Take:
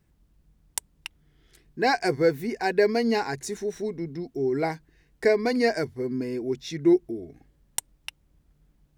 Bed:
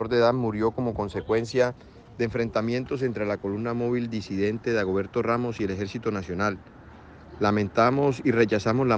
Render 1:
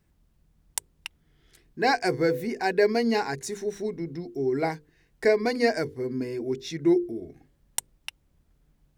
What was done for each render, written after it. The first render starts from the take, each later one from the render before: hum notches 50/100/150/200/250/300/350/400/450/500 Hz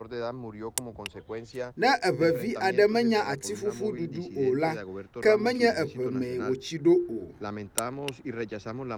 add bed -13 dB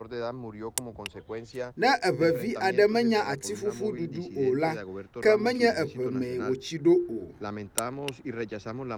no audible change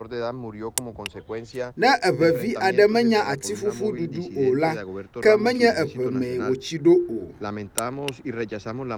trim +5 dB; peak limiter -3 dBFS, peak gain reduction 2.5 dB

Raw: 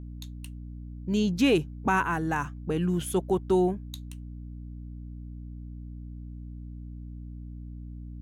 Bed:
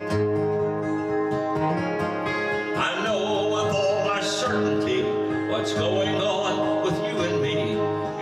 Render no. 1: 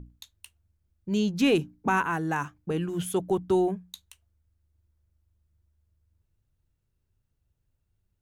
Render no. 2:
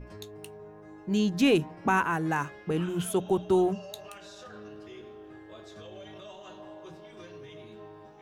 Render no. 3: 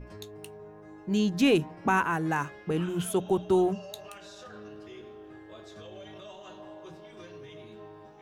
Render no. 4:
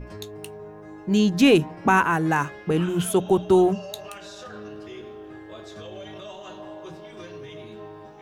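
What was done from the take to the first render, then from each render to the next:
hum notches 60/120/180/240/300 Hz
add bed -22.5 dB
no audible change
trim +6.5 dB

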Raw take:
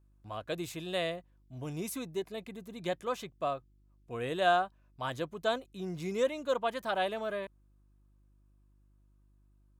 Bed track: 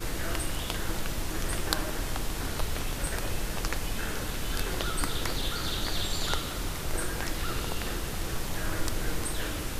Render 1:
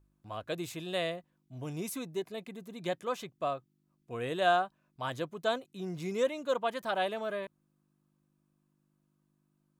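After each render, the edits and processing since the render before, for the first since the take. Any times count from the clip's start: de-hum 50 Hz, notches 2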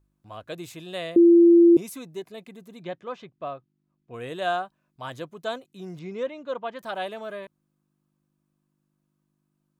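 1.16–1.77 s: bleep 341 Hz -10.5 dBFS; 2.83–4.14 s: distance through air 190 m; 5.99–6.79 s: distance through air 170 m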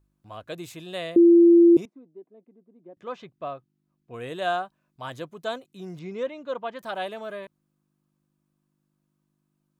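1.85–2.97 s: ladder band-pass 350 Hz, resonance 35%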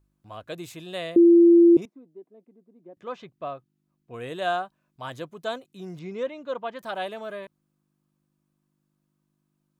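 1.24–1.82 s: low-pass 2.7 kHz 6 dB/octave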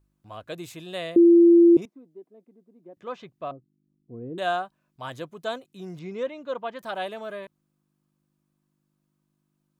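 3.51–4.38 s: resonant low-pass 300 Hz, resonance Q 1.7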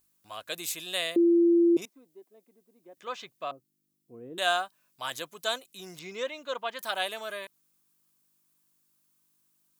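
tilt EQ +4.5 dB/octave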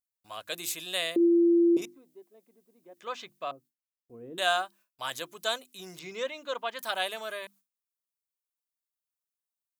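hum notches 50/100/150/200/250/300/350 Hz; gate with hold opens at -58 dBFS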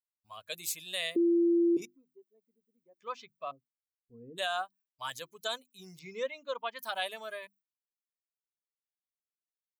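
expander on every frequency bin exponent 1.5; peak limiter -22 dBFS, peak gain reduction 9 dB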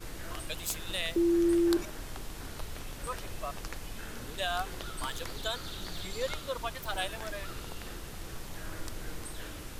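add bed track -9.5 dB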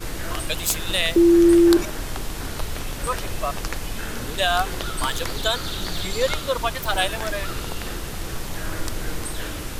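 trim +12 dB; peak limiter -2 dBFS, peak gain reduction 1 dB

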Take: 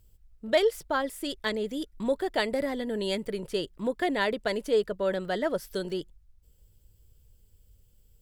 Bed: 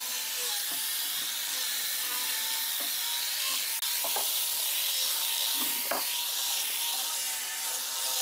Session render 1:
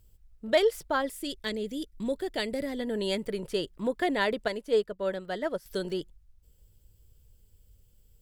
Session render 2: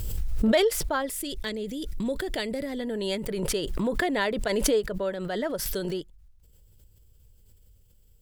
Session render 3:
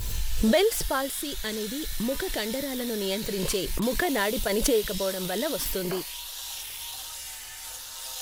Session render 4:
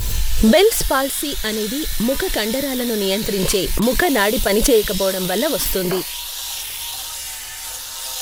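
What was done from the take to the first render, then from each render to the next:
1.11–2.79 s: peaking EQ 1 kHz -9.5 dB 1.7 oct; 4.48–5.66 s: upward expansion, over -43 dBFS
swell ahead of each attack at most 23 dB/s
add bed -6.5 dB
trim +9.5 dB; peak limiter -2 dBFS, peak gain reduction 2.5 dB

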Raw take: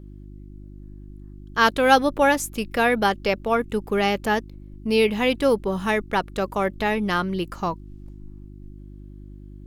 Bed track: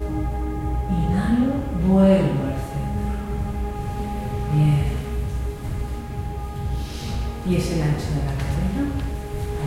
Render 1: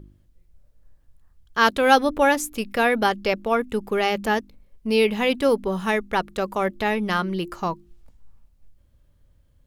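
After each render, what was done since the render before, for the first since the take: de-hum 50 Hz, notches 7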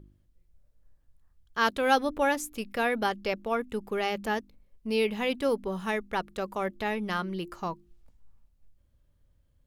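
trim -7.5 dB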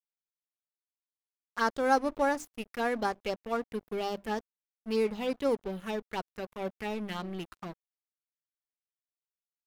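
touch-sensitive phaser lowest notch 280 Hz, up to 3.2 kHz, full sweep at -23.5 dBFS; crossover distortion -42 dBFS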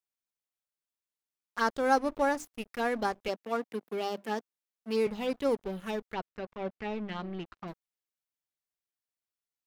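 3.28–5.07 s: high-pass 190 Hz 24 dB/octave; 6.13–7.68 s: distance through air 160 m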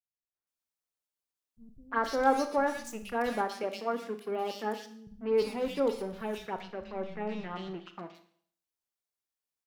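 three bands offset in time lows, mids, highs 350/470 ms, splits 160/2300 Hz; Schroeder reverb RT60 0.59 s, combs from 26 ms, DRR 9 dB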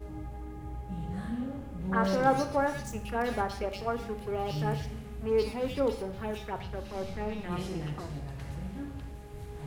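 add bed track -15.5 dB

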